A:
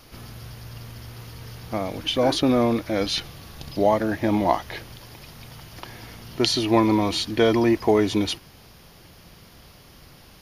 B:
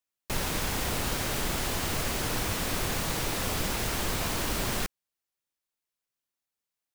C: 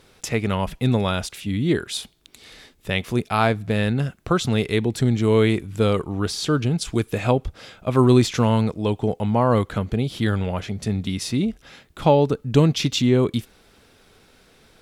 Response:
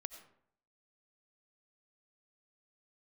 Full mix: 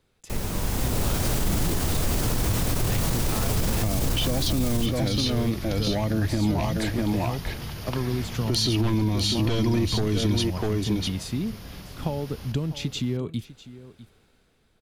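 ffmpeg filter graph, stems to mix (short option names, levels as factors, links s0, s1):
-filter_complex "[0:a]aeval=exprs='0.668*sin(PI/2*2.51*val(0)/0.668)':c=same,adelay=2100,volume=0.376,asplit=2[s0][s1];[s1]volume=0.501[s2];[1:a]equalizer=f=2200:t=o:w=2.5:g=-6,volume=0.75,asplit=2[s3][s4];[s4]volume=0.251[s5];[2:a]bandreject=f=5500:w=12,acompressor=threshold=0.1:ratio=6,volume=0.141,asplit=2[s6][s7];[s7]volume=0.447[s8];[s3][s6]amix=inputs=2:normalize=0,dynaudnorm=f=200:g=9:m=3.16,alimiter=limit=0.15:level=0:latency=1,volume=1[s9];[s2][s5][s8]amix=inputs=3:normalize=0,aecho=0:1:649:1[s10];[s0][s9][s10]amix=inputs=3:normalize=0,lowshelf=f=210:g=7,acrossover=split=200|3000[s11][s12][s13];[s12]acompressor=threshold=0.0501:ratio=6[s14];[s11][s14][s13]amix=inputs=3:normalize=0,alimiter=limit=0.178:level=0:latency=1:release=22"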